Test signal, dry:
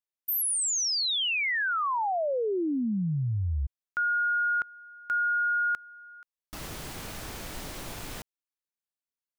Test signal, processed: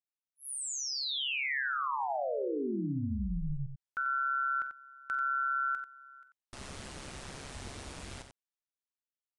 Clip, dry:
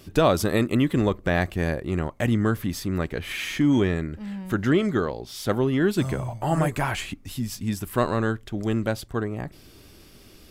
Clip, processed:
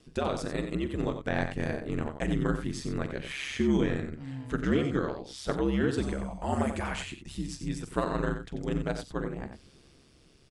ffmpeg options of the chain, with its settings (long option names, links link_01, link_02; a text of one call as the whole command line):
ffmpeg -i in.wav -af "dynaudnorm=framelen=220:gausssize=9:maxgain=5.5dB,aeval=exprs='val(0)*sin(2*PI*68*n/s)':channel_layout=same,aecho=1:1:45|91:0.2|0.376,aresample=22050,aresample=44100,volume=-8.5dB" out.wav